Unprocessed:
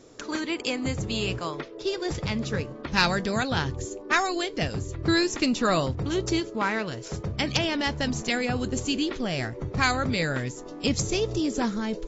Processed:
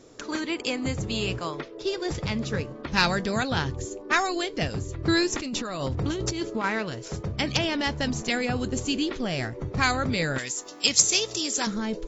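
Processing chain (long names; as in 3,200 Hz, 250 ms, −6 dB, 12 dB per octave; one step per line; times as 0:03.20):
0:05.32–0:06.64: compressor whose output falls as the input rises −29 dBFS, ratio −1
0:10.38–0:11.67: spectral tilt +4.5 dB per octave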